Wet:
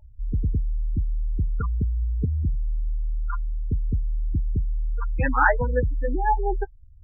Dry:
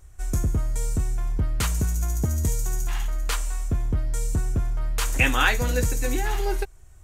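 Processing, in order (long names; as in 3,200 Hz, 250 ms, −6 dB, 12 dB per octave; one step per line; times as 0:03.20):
high shelf with overshoot 2,300 Hz −12.5 dB, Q 1.5
gate on every frequency bin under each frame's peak −15 dB strong
hollow resonant body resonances 610/870 Hz, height 18 dB, ringing for 80 ms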